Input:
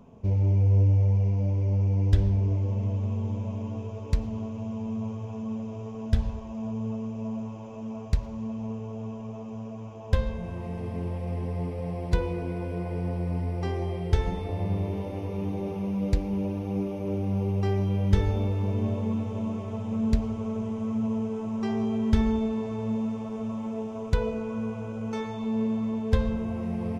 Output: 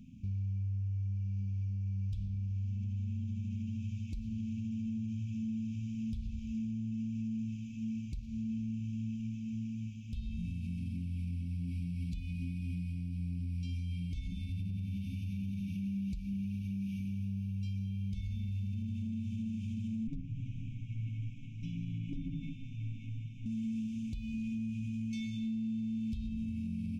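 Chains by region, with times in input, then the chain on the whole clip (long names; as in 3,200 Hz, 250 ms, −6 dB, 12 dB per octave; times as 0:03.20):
0:20.07–0:23.46: lower of the sound and its delayed copy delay 7 ms + moving average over 10 samples + comb filter 6.8 ms, depth 78%
whole clip: brick-wall band-stop 290–2,200 Hz; downward compressor 5 to 1, threshold −30 dBFS; brickwall limiter −31 dBFS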